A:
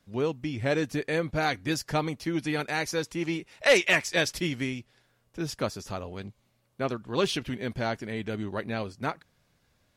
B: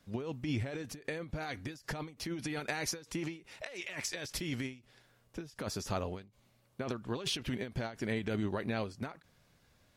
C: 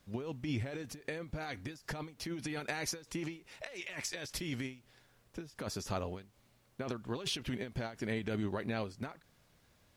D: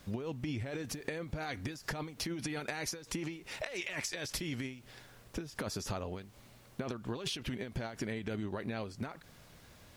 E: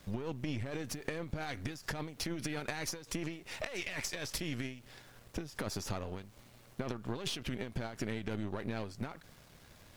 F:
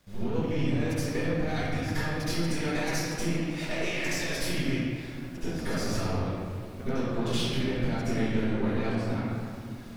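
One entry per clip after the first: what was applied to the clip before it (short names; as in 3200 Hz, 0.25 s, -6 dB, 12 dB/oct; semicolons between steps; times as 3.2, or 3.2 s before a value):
negative-ratio compressor -33 dBFS, ratio -1; ending taper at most 160 dB/s; gain -3 dB
added noise pink -72 dBFS; gain -1.5 dB
compressor, threshold -46 dBFS, peak gain reduction 14 dB; gain +10.5 dB
half-wave gain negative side -7 dB; gain +2 dB
reverb RT60 2.2 s, pre-delay 65 ms, DRR -16 dB; gain -7.5 dB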